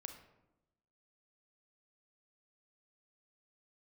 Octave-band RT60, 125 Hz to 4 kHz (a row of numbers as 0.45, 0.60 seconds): 1.2, 1.2, 1.0, 0.90, 0.70, 0.50 seconds